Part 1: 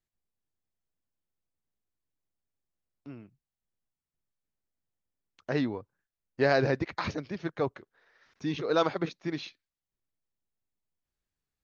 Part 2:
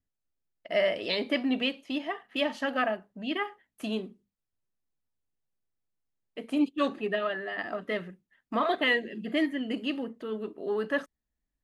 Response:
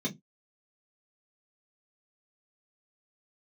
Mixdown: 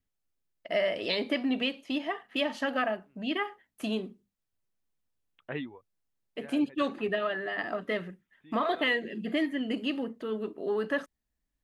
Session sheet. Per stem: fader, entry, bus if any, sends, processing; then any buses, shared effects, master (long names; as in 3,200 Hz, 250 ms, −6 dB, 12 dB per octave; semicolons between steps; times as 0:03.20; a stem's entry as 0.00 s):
−7.5 dB, 0.00 s, no send, reverb reduction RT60 0.82 s; Butterworth low-pass 3,500 Hz 96 dB per octave; high-shelf EQ 2,100 Hz +11.5 dB; automatic ducking −17 dB, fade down 0.80 s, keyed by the second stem
+1.5 dB, 0.00 s, no send, downward compressor 2 to 1, threshold −28 dBFS, peak gain reduction 4.5 dB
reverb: not used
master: no processing